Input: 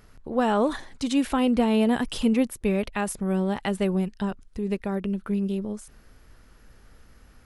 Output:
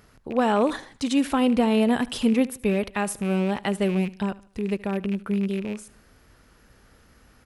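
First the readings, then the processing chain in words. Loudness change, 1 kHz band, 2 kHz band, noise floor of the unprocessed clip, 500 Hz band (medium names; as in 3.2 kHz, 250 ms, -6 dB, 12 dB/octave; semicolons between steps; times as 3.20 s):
+1.0 dB, +1.5 dB, +2.5 dB, -55 dBFS, +1.5 dB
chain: rattle on loud lows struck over -36 dBFS, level -30 dBFS; high-pass 82 Hz 6 dB/octave; on a send: feedback delay 75 ms, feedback 39%, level -20.5 dB; on the sum: trim +1.5 dB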